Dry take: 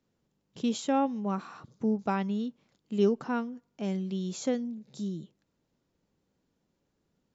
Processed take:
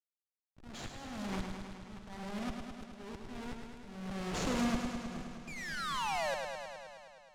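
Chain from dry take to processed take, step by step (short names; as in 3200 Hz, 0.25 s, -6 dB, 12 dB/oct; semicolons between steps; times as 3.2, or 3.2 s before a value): HPF 44 Hz 24 dB/oct; high shelf 6000 Hz +6.5 dB; Schmitt trigger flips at -36 dBFS; negative-ratio compressor -40 dBFS, ratio -0.5; echo with dull and thin repeats by turns 0.105 s, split 1500 Hz, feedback 77%, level -10 dB; painted sound fall, 5.47–6.35, 520–2500 Hz -49 dBFS; bit-crush 8-bit; air absorption 55 m; auto swell 0.799 s; warbling echo 0.105 s, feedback 75%, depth 55 cents, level -6 dB; gain +10.5 dB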